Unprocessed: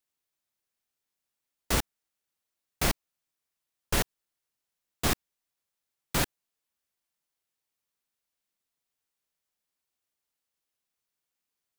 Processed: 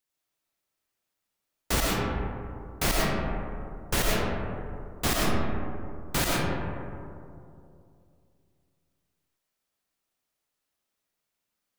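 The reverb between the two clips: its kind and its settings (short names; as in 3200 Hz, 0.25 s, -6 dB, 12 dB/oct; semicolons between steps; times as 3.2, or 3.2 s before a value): digital reverb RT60 2.6 s, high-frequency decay 0.3×, pre-delay 65 ms, DRR -4 dB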